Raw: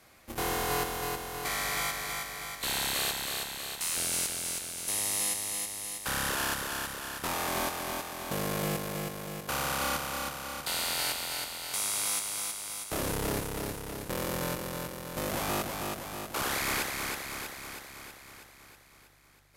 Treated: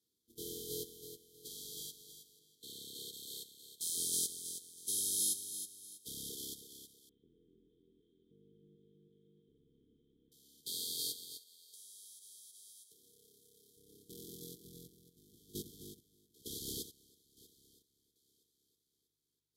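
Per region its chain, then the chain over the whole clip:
2.39–3.13 HPF 66 Hz + high shelf 3500 Hz -6 dB
7.09–10.32 delta modulation 16 kbps, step -44 dBFS + compressor 2.5:1, threshold -38 dBFS
11.37–13.77 low shelf 340 Hz -11.5 dB + notch 310 Hz, Q 5.7 + compressor 10:1, threshold -35 dBFS
14.64–18.16 chopper 1.1 Hz, depth 60% + low shelf 140 Hz +11.5 dB
whole clip: FFT band-reject 490–3100 Hz; HPF 230 Hz 6 dB/oct; upward expander 2.5:1, over -43 dBFS; gain -2 dB

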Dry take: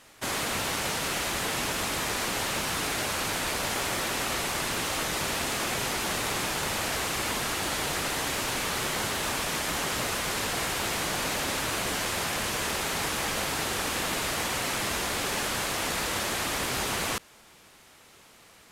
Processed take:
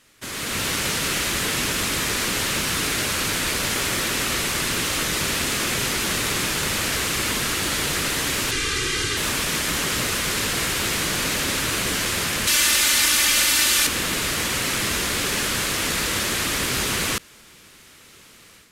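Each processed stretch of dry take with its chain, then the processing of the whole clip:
8.51–9.17 Bessel low-pass 7900 Hz, order 4 + bell 720 Hz -14 dB 0.81 oct + comb 2.5 ms, depth 75%
12.47–13.87 tilt shelf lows -7 dB, about 1100 Hz + comb 3.4 ms
whole clip: bell 770 Hz -10 dB 1 oct; AGC gain up to 9 dB; gain -1.5 dB

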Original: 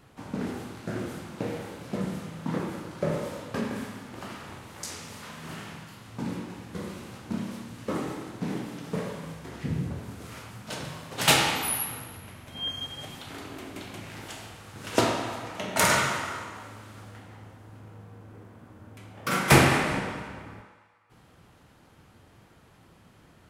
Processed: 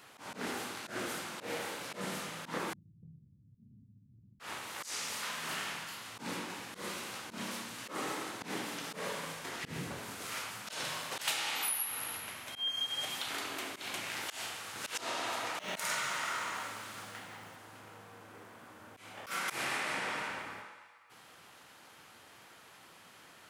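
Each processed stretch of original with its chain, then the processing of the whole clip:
2.73–4.4 inverse Chebyshev low-pass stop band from 580 Hz, stop band 70 dB + three-band squash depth 70%
15.58–17.56 bell 160 Hz +6.5 dB 0.72 oct + short-mantissa float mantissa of 4-bit
whole clip: HPF 1400 Hz 6 dB/oct; compressor 8:1, threshold -39 dBFS; auto swell 0.112 s; gain +7.5 dB

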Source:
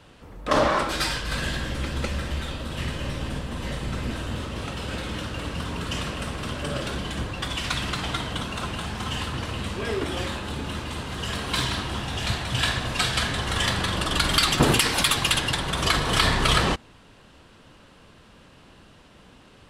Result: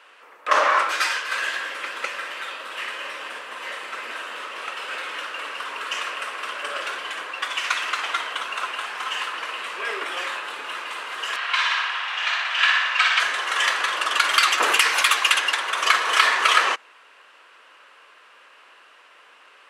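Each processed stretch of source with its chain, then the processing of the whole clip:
11.36–13.2 BPF 730–3400 Hz + tilt +2 dB/oct + flutter echo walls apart 10.2 m, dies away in 0.79 s
whole clip: dynamic EQ 6300 Hz, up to +6 dB, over -46 dBFS, Q 3.5; HPF 450 Hz 24 dB/oct; band shelf 1700 Hz +9 dB; gain -2 dB

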